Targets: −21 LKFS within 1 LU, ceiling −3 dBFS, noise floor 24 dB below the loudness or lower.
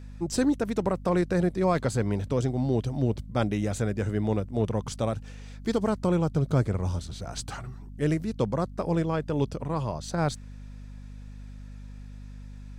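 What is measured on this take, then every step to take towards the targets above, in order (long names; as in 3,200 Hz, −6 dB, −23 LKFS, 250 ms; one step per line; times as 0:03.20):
mains hum 50 Hz; hum harmonics up to 250 Hz; level of the hum −40 dBFS; integrated loudness −28.0 LKFS; sample peak −13.5 dBFS; target loudness −21.0 LKFS
→ hum removal 50 Hz, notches 5
level +7 dB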